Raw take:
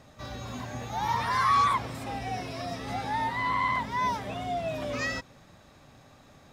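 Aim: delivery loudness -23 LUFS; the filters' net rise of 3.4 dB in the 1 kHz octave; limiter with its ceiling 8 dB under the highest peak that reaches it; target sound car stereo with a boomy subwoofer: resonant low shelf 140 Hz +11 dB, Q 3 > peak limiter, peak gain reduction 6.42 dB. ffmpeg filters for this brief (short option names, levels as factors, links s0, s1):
-af "equalizer=f=1000:t=o:g=4,alimiter=limit=0.112:level=0:latency=1,lowshelf=f=140:t=q:w=3:g=11,volume=2.11,alimiter=limit=0.188:level=0:latency=1"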